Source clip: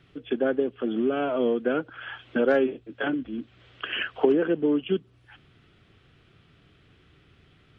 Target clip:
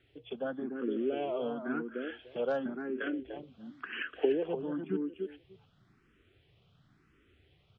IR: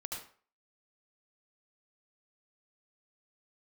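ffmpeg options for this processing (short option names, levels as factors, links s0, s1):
-filter_complex "[0:a]asplit=2[s0][s1];[s1]adelay=296,lowpass=f=880:p=1,volume=0.631,asplit=2[s2][s3];[s3]adelay=296,lowpass=f=880:p=1,volume=0.17,asplit=2[s4][s5];[s5]adelay=296,lowpass=f=880:p=1,volume=0.17[s6];[s2][s4][s6]amix=inputs=3:normalize=0[s7];[s0][s7]amix=inputs=2:normalize=0,asplit=2[s8][s9];[s9]afreqshift=0.95[s10];[s8][s10]amix=inputs=2:normalize=1,volume=0.473"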